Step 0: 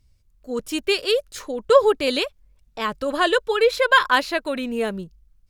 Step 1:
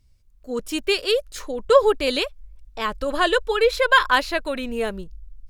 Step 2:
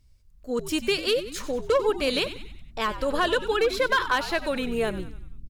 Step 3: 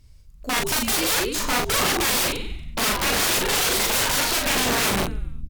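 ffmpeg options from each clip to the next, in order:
-af "asubboost=boost=9.5:cutoff=51"
-filter_complex "[0:a]acompressor=threshold=-21dB:ratio=2.5,asoftclip=type=hard:threshold=-15.5dB,asplit=2[a][b];[b]asplit=5[c][d][e][f][g];[c]adelay=94,afreqshift=-79,volume=-13dB[h];[d]adelay=188,afreqshift=-158,volume=-19.2dB[i];[e]adelay=282,afreqshift=-237,volume=-25.4dB[j];[f]adelay=376,afreqshift=-316,volume=-31.6dB[k];[g]adelay=470,afreqshift=-395,volume=-37.8dB[l];[h][i][j][k][l]amix=inputs=5:normalize=0[m];[a][m]amix=inputs=2:normalize=0"
-filter_complex "[0:a]aeval=exprs='(mod(20*val(0)+1,2)-1)/20':c=same,asplit=2[a][b];[b]adelay=40,volume=-3dB[c];[a][c]amix=inputs=2:normalize=0,volume=8dB" -ar 48000 -c:a libopus -b:a 256k

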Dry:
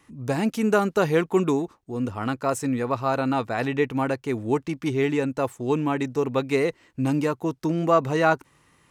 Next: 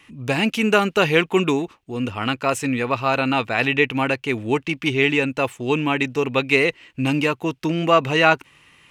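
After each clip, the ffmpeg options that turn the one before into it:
-af "equalizer=f=2.7k:t=o:w=0.97:g=15,volume=2dB"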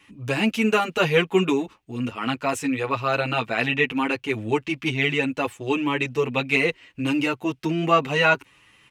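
-filter_complex "[0:a]asplit=2[a][b];[b]adelay=7.8,afreqshift=0.72[c];[a][c]amix=inputs=2:normalize=1"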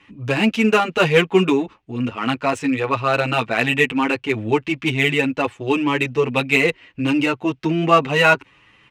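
-af "adynamicsmooth=sensitivity=3:basefreq=4.4k,volume=4.5dB"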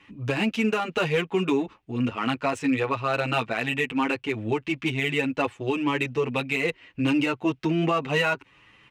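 -af "alimiter=limit=-12dB:level=0:latency=1:release=263,volume=-2.5dB"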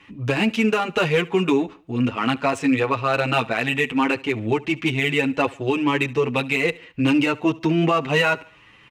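-af "aecho=1:1:71|142|213:0.0794|0.0334|0.014,volume=4.5dB"

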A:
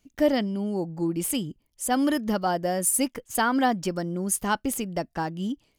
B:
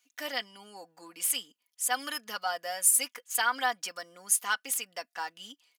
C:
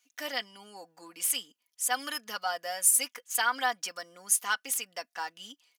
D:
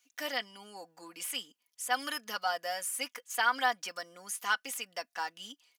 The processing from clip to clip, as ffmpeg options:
-af "highpass=1.3k,aecho=1:1:4.1:0.62"
-af "equalizer=f=5.9k:w=5.3:g=3"
-filter_complex "[0:a]acrossover=split=3100[a][b];[b]acompressor=threshold=-35dB:ratio=4:attack=1:release=60[c];[a][c]amix=inputs=2:normalize=0"

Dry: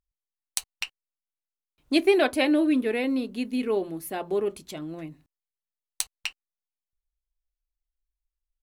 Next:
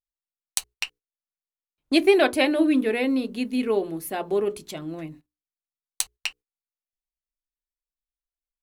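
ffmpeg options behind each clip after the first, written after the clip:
-af "bandreject=f=60:t=h:w=6,bandreject=f=120:t=h:w=6,bandreject=f=180:t=h:w=6,bandreject=f=240:t=h:w=6,bandreject=f=300:t=h:w=6,bandreject=f=360:t=h:w=6,bandreject=f=420:t=h:w=6,bandreject=f=480:t=h:w=6,agate=range=-17dB:threshold=-48dB:ratio=16:detection=peak,volume=3dB"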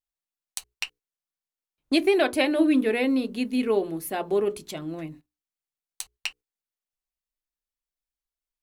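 -af "alimiter=limit=-11dB:level=0:latency=1:release=186"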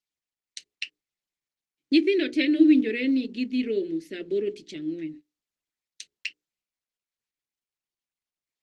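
-af "asuperstop=centerf=920:order=4:qfactor=0.53,highpass=230,equalizer=f=310:t=q:w=4:g=7,equalizer=f=770:t=q:w=4:g=-9,equalizer=f=1.1k:t=q:w=4:g=-6,equalizer=f=1.9k:t=q:w=4:g=5,lowpass=f=6.1k:w=0.5412,lowpass=f=6.1k:w=1.3066" -ar 48000 -c:a libopus -b:a 20k

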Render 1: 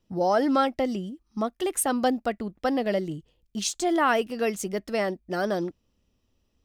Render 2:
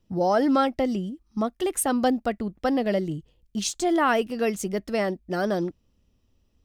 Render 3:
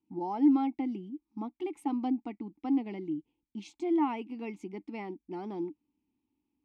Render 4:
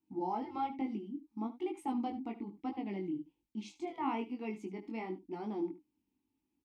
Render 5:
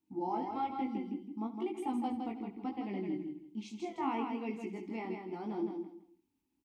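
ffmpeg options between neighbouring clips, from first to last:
-af "lowshelf=f=230:g=6"
-filter_complex "[0:a]asplit=3[a][b][c];[a]bandpass=f=300:t=q:w=8,volume=0dB[d];[b]bandpass=f=870:t=q:w=8,volume=-6dB[e];[c]bandpass=f=2.24k:t=q:w=8,volume=-9dB[f];[d][e][f]amix=inputs=3:normalize=0,volume=2.5dB"
-af "aecho=1:1:74:0.178,afftfilt=real='re*lt(hypot(re,im),0.398)':imag='im*lt(hypot(re,im),0.398)':win_size=1024:overlap=0.75,flanger=delay=18.5:depth=4.1:speed=1.1,volume=1.5dB"
-af "aecho=1:1:162|324|486:0.562|0.135|0.0324"

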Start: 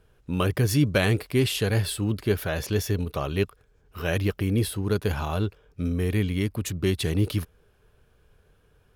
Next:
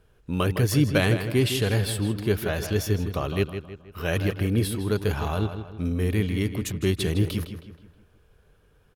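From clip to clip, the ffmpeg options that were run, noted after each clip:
-filter_complex "[0:a]asplit=2[a][b];[b]adelay=159,lowpass=f=4.4k:p=1,volume=-9dB,asplit=2[c][d];[d]adelay=159,lowpass=f=4.4k:p=1,volume=0.44,asplit=2[e][f];[f]adelay=159,lowpass=f=4.4k:p=1,volume=0.44,asplit=2[g][h];[h]adelay=159,lowpass=f=4.4k:p=1,volume=0.44,asplit=2[i][j];[j]adelay=159,lowpass=f=4.4k:p=1,volume=0.44[k];[a][c][e][g][i][k]amix=inputs=6:normalize=0"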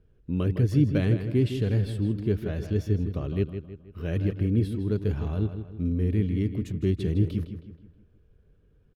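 -af "firequalizer=gain_entry='entry(270,0);entry(820,-15);entry(1900,-12);entry(11000,-23)':delay=0.05:min_phase=1"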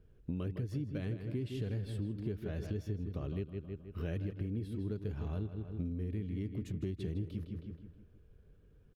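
-af "acompressor=threshold=-33dB:ratio=12,volume=-1dB"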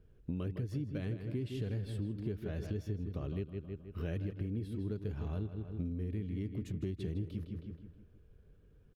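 -af anull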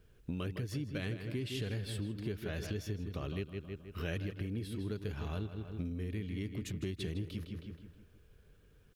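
-af "tiltshelf=f=970:g=-6.5,volume=5dB"

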